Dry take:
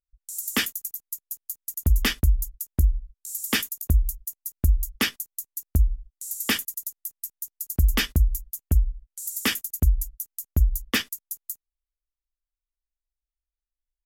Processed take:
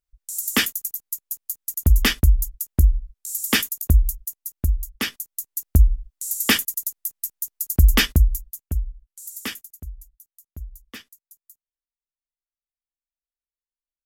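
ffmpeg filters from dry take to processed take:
-af "volume=14.5dB,afade=t=out:st=3.99:d=0.95:silence=0.375837,afade=t=in:st=4.94:d=0.71:silence=0.316228,afade=t=out:st=8.03:d=0.63:silence=0.298538,afade=t=out:st=9.36:d=0.46:silence=0.266073"

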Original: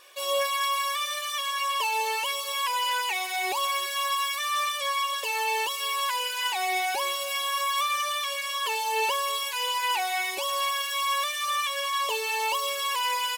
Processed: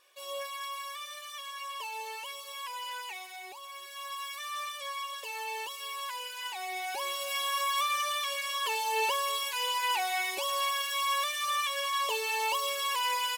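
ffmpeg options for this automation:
-af "volume=4.5dB,afade=t=out:st=3.08:d=0.53:silence=0.421697,afade=t=in:st=3.61:d=0.79:silence=0.334965,afade=t=in:st=6.76:d=0.64:silence=0.446684"

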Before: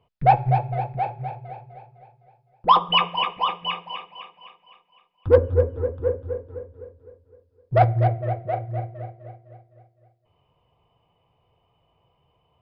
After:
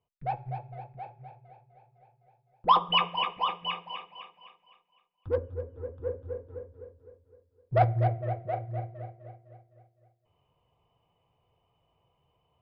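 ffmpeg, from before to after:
-af "volume=6dB,afade=t=in:st=1.71:d=0.96:silence=0.281838,afade=t=out:st=4.18:d=1.43:silence=0.251189,afade=t=in:st=5.61:d=0.95:silence=0.266073"

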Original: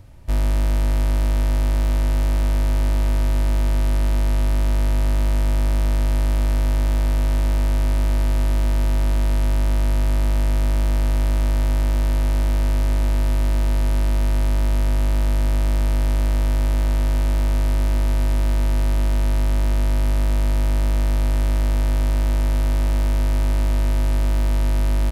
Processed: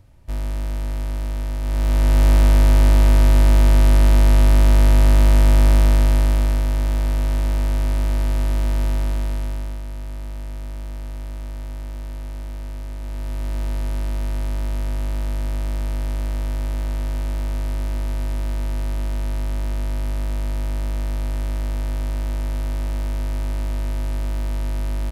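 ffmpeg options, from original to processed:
-af "volume=13dB,afade=t=in:st=1.61:d=0.68:silence=0.251189,afade=t=out:st=5.71:d=0.95:silence=0.446684,afade=t=out:st=8.86:d=0.96:silence=0.281838,afade=t=in:st=12.99:d=0.64:silence=0.446684"

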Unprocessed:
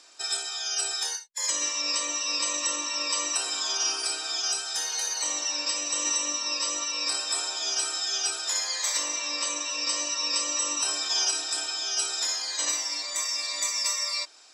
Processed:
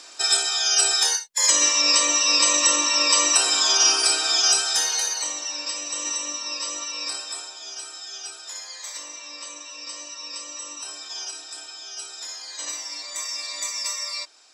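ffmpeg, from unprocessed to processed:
-af "volume=16.5dB,afade=t=out:st=4.62:d=0.72:silence=0.298538,afade=t=out:st=7.03:d=0.51:silence=0.446684,afade=t=in:st=12.17:d=1.15:silence=0.446684"

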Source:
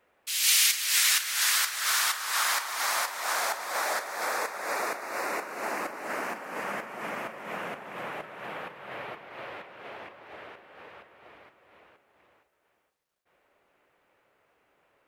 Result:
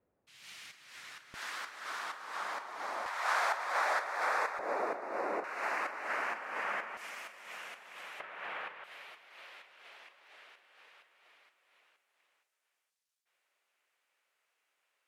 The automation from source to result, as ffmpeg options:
-af "asetnsamples=n=441:p=0,asendcmd='1.34 bandpass f 290;3.06 bandpass f 1200;4.59 bandpass f 460;5.44 bandpass f 1700;6.97 bandpass f 5800;8.2 bandpass f 2000;8.84 bandpass f 7000',bandpass=f=110:t=q:w=0.69:csg=0"

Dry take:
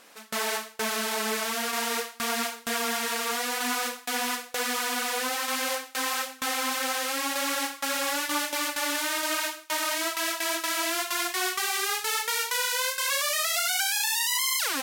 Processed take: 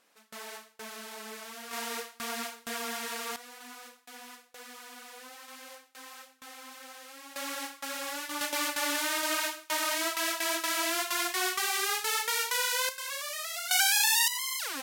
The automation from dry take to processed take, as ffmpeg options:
-af "asetnsamples=n=441:p=0,asendcmd='1.71 volume volume -7.5dB;3.36 volume volume -19dB;7.36 volume volume -8.5dB;8.41 volume volume -2dB;12.89 volume volume -10dB;13.71 volume volume 2dB;14.28 volume volume -7.5dB',volume=-14.5dB"

